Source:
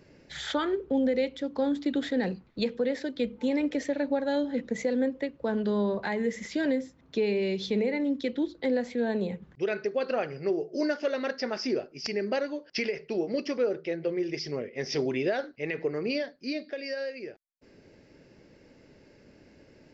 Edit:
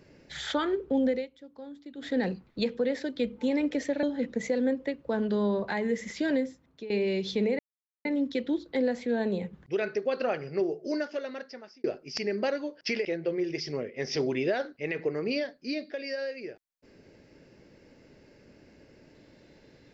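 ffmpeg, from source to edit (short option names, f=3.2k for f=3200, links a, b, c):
-filter_complex "[0:a]asplit=8[a][b][c][d][e][f][g][h];[a]atrim=end=1.27,asetpts=PTS-STARTPTS,afade=t=out:st=1.1:d=0.17:silence=0.149624[i];[b]atrim=start=1.27:end=1.97,asetpts=PTS-STARTPTS,volume=-16.5dB[j];[c]atrim=start=1.97:end=4.032,asetpts=PTS-STARTPTS,afade=t=in:d=0.17:silence=0.149624[k];[d]atrim=start=4.378:end=7.25,asetpts=PTS-STARTPTS,afade=t=out:st=2.352:d=0.52:silence=0.141254[l];[e]atrim=start=7.25:end=7.94,asetpts=PTS-STARTPTS,afade=t=in:d=0.004:c=hsin:silence=0.141254,afade=t=out:st=0.686:d=0.004:c=hsin,apad=pad_dur=0.46[m];[f]atrim=start=7.94:end=11.73,asetpts=PTS-STARTPTS,afade=t=in:d=0.004:c=hsin,afade=t=out:st=2.59:d=1.2[n];[g]atrim=start=11.73:end=12.942,asetpts=PTS-STARTPTS,afade=t=in:d=0.004:c=hsin[o];[h]atrim=start=13.838[p];[i][j][k]concat=n=3:v=0:a=1[q];[l][m][n][o]concat=n=4:v=0:a=1[r];[q][r]acrossfade=d=0.004:c1=hsin:c2=hsin[s];[s][p]acrossfade=d=0.004:c1=hsin:c2=hsin"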